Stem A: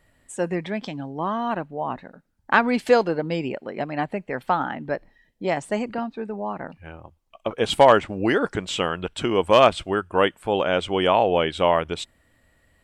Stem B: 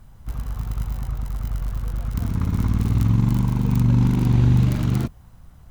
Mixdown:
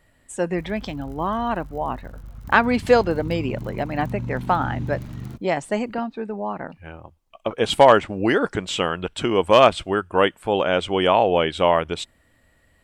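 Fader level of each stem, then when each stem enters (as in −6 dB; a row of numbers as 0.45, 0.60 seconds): +1.5, −13.0 decibels; 0.00, 0.30 seconds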